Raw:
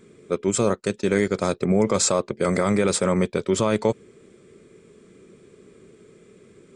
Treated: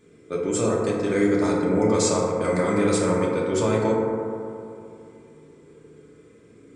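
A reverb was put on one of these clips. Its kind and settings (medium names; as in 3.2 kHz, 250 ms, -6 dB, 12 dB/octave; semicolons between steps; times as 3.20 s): FDN reverb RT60 2.6 s, high-frequency decay 0.25×, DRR -5 dB; trim -6.5 dB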